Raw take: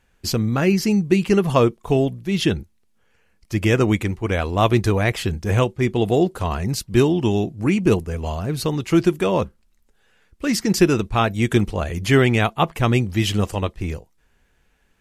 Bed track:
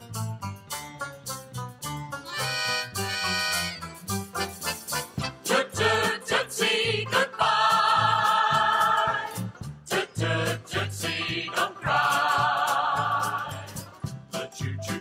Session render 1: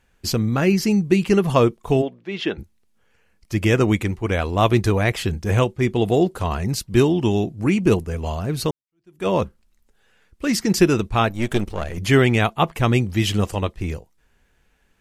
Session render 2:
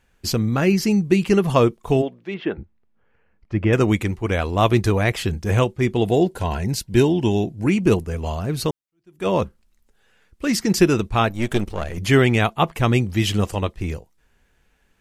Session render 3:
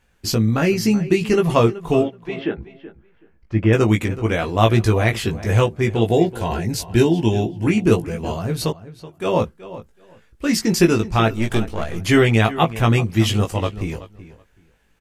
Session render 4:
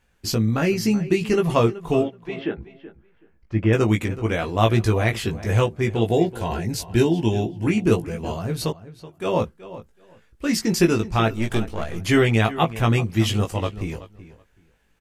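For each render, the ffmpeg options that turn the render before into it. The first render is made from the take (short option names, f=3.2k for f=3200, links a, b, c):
-filter_complex "[0:a]asplit=3[a][b][c];[a]afade=t=out:st=2.01:d=0.02[d];[b]highpass=360,lowpass=2.9k,afade=t=in:st=2.01:d=0.02,afade=t=out:st=2.57:d=0.02[e];[c]afade=t=in:st=2.57:d=0.02[f];[d][e][f]amix=inputs=3:normalize=0,asettb=1/sr,asplit=3[g][h][i];[g]atrim=end=11.294[j];[h]atrim=start=11.29:end=11.98,asetpts=PTS-STARTPTS,afade=t=in:d=0.004:c=qsin,afade=t=out:st=0.686:d=0.004:c=qsin,aeval=exprs='if(lt(val(0),0),0.251*val(0),val(0))':c=same[k];[i]atrim=start=11.976[l];[j][k]acrossfade=d=0.004:c1=hsin:c2=qsin[m];[m][l]acrossfade=d=0.004:c1=qsin:c2=hsin,asplit=2[n][o];[n]atrim=end=8.71,asetpts=PTS-STARTPTS,afade=t=out:st=8.706:d=0.004:c=hsin[p];[o]atrim=start=8.71,asetpts=PTS-STARTPTS,afade=t=in:d=0.56:c=exp[q];[p][q]concat=n=2:v=0:a=1"
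-filter_complex "[0:a]asettb=1/sr,asplit=3[a][b][c];[a]atrim=end=2.344[d];[b]atrim=start=2.34:end=3.73,asetpts=PTS-STARTPTS,afade=t=in:d=0.004:c=qsin,afade=t=out:st=1.386:d=0.004:c=qsin,lowpass=1.8k[e];[c]atrim=start=3.726[f];[d][e]acrossfade=d=0.004:c1=hsin:c2=qsin[g];[g][f]acrossfade=d=0.004:c1=qsin:c2=hsin,asettb=1/sr,asplit=3[h][i][j];[h]atrim=end=6.074[k];[i]atrim=start=6.07:end=7.67,asetpts=PTS-STARTPTS,afade=t=in:d=0.004:c=qsin,afade=t=out:st=1.596:d=0.004:c=qsin,asuperstop=centerf=1200:order=12:qfactor=5.4[l];[j]atrim=start=7.666[m];[k][l]acrossfade=d=0.004:c1=hsin:c2=qsin[n];[n][m]acrossfade=d=0.004:c1=qsin:c2=hsin"
-filter_complex "[0:a]asplit=2[a][b];[b]adelay=18,volume=-4dB[c];[a][c]amix=inputs=2:normalize=0,asplit=2[d][e];[e]adelay=377,lowpass=f=3.6k:p=1,volume=-15.5dB,asplit=2[f][g];[g]adelay=377,lowpass=f=3.6k:p=1,volume=0.18[h];[d][f][h]amix=inputs=3:normalize=0"
-af "volume=-3dB"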